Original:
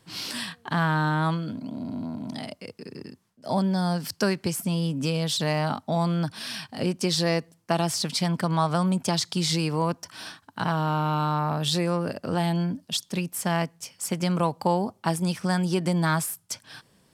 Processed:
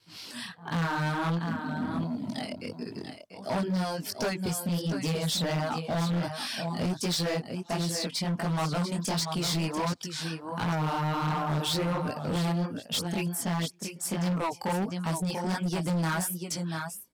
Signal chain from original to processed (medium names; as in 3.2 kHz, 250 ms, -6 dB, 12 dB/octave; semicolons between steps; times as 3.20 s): pre-echo 158 ms -23 dB; gate with hold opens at -52 dBFS; level rider gain up to 12 dB; chorus 1.4 Hz, delay 17 ms, depth 7.9 ms; reverb removal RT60 0.69 s; on a send: delay 689 ms -9.5 dB; on the sum: hard clipper -18.5 dBFS, distortion -9 dB; trim -7 dB